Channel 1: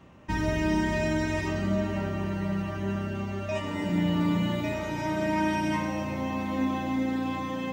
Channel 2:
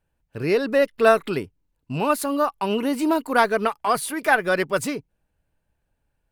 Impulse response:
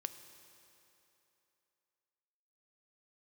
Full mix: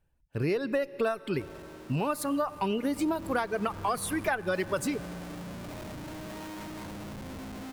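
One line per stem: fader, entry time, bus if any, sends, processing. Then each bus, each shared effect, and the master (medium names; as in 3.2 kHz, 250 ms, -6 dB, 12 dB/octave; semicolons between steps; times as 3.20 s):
2.66 s -20.5 dB -> 3.14 s -12 dB, 1.05 s, no send, Schmitt trigger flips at -31 dBFS
-5.5 dB, 0.00 s, send -4 dB, reverb removal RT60 1.5 s; bass shelf 200 Hz +6 dB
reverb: on, RT60 3.1 s, pre-delay 3 ms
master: compression 10:1, threshold -25 dBFS, peak gain reduction 13.5 dB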